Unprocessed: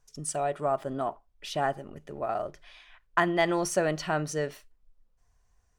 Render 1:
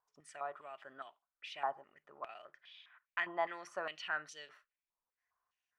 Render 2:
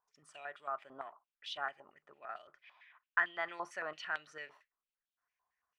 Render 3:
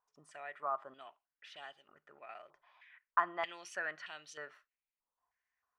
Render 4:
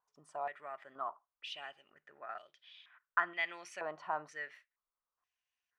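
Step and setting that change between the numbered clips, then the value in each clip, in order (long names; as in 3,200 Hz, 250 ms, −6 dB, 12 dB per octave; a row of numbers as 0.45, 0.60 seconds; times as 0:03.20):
band-pass on a step sequencer, speed: 4.9, 8.9, 3.2, 2.1 Hertz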